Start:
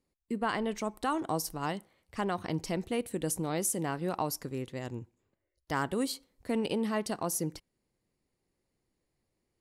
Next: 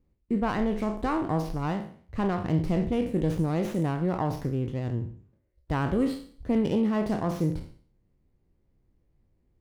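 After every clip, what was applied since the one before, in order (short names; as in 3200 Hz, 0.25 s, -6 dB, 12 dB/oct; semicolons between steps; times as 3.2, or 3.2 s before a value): spectral trails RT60 0.49 s; RIAA curve playback; running maximum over 5 samples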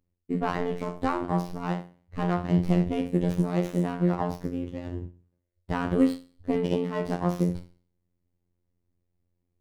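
robotiser 88 Hz; upward expander 1.5:1, over -47 dBFS; gain +6 dB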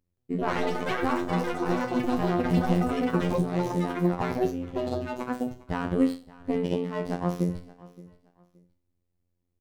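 feedback echo 0.572 s, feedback 26%, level -20.5 dB; echoes that change speed 0.172 s, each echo +6 st, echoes 3; gain -1.5 dB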